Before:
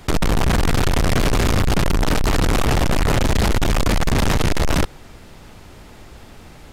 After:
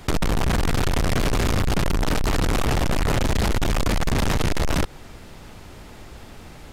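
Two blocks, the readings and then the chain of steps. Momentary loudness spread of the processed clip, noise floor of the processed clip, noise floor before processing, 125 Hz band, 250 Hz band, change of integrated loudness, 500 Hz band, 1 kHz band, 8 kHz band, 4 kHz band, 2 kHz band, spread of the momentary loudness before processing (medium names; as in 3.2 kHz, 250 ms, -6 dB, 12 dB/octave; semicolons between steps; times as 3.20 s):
20 LU, -42 dBFS, -42 dBFS, -4.0 dB, -4.0 dB, -4.0 dB, -4.0 dB, -4.0 dB, -4.0 dB, -4.0 dB, -4.0 dB, 2 LU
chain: compression 4:1, threshold -20 dBFS, peak gain reduction 4 dB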